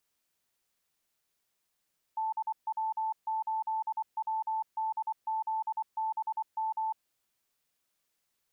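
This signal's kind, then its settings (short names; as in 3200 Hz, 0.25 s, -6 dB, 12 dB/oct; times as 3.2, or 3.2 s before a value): Morse "DW8WDZBM" 24 wpm 880 Hz -29 dBFS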